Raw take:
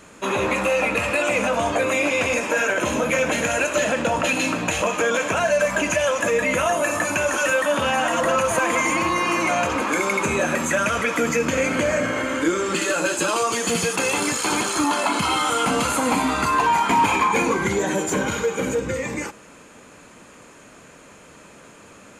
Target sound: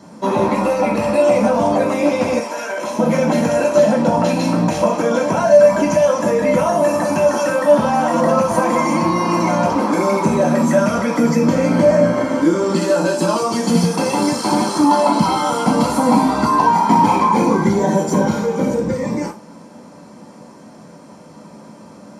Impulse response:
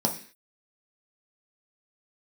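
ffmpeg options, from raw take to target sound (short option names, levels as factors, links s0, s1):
-filter_complex "[0:a]asettb=1/sr,asplit=3[s0][s1][s2];[s0]atrim=end=2.404[s3];[s1]atrim=start=2.4:end=2.99,asetpts=PTS-STARTPTS,afade=t=in:d=0.004:c=qsin,afade=t=out:st=0.586:d=0.004:c=qsin,highpass=f=1300:p=1[s4];[s2]atrim=start=2.986[s5];[s3][s4]acrossfade=d=0.004:c1=hsin:c2=qsin[s6];[s6][s5]acrossfade=d=0.004:c1=qsin:c2=hsin[s7];[1:a]atrim=start_sample=2205,atrim=end_sample=3969[s8];[s7][s8]afir=irnorm=-1:irlink=0,volume=0.422"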